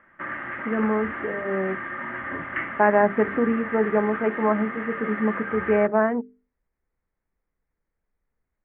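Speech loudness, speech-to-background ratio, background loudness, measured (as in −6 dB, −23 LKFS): −24.0 LKFS, 7.5 dB, −31.5 LKFS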